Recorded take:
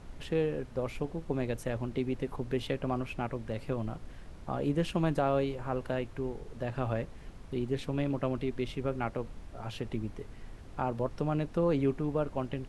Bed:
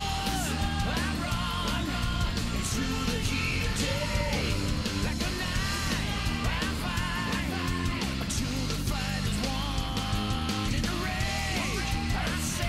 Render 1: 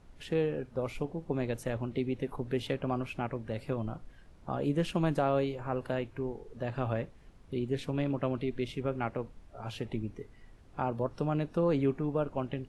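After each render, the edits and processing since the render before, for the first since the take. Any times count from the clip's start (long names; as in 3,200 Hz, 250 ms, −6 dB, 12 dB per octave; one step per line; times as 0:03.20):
noise reduction from a noise print 9 dB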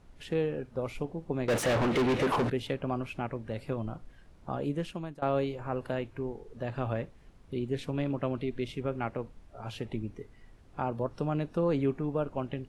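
0:01.48–0:02.50: mid-hump overdrive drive 37 dB, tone 2,800 Hz, clips at −19 dBFS
0:04.54–0:05.22: fade out, to −22 dB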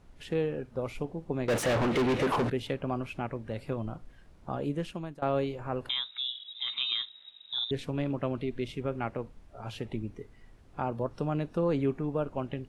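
0:05.89–0:07.71: voice inversion scrambler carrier 3,800 Hz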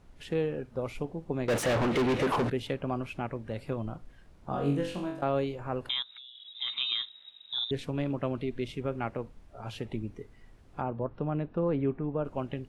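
0:04.49–0:05.23: flutter between parallel walls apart 3.7 metres, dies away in 0.5 s
0:06.02–0:06.55: downward compressor 20 to 1, threshold −44 dBFS
0:10.81–0:12.25: high-frequency loss of the air 400 metres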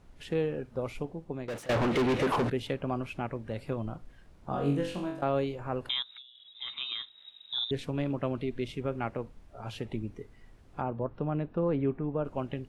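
0:00.70–0:01.69: fade out equal-power, to −20 dB
0:06.22–0:07.18: low-pass filter 2,200 Hz 6 dB per octave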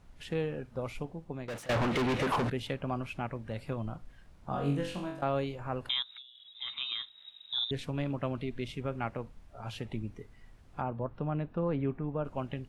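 parametric band 380 Hz −5 dB 1.2 octaves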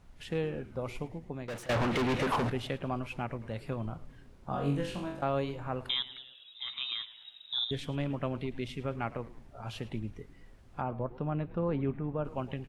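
echo with shifted repeats 108 ms, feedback 54%, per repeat −130 Hz, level −17 dB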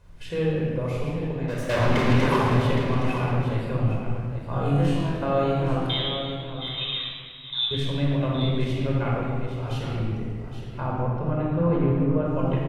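single-tap delay 817 ms −10 dB
rectangular room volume 3,200 cubic metres, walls mixed, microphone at 5.1 metres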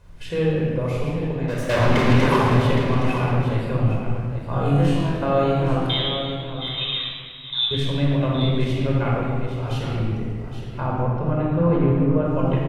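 level +3.5 dB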